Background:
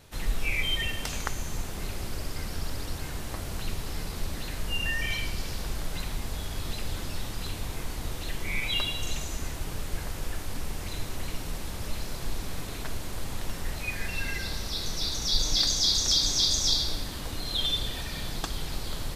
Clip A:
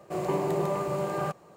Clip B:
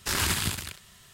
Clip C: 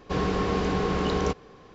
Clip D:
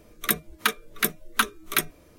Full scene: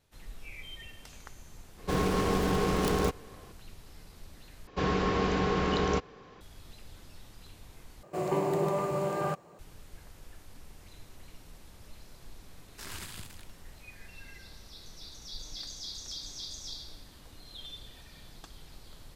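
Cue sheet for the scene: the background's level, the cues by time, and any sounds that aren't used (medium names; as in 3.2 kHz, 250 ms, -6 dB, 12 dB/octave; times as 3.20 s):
background -17 dB
1.78 s: add C -2 dB + tracing distortion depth 0.49 ms
4.67 s: replace with C -3 dB + peaking EQ 2 kHz +3 dB 2.3 oct
8.03 s: replace with A -1 dB
12.72 s: add B -16.5 dB
not used: D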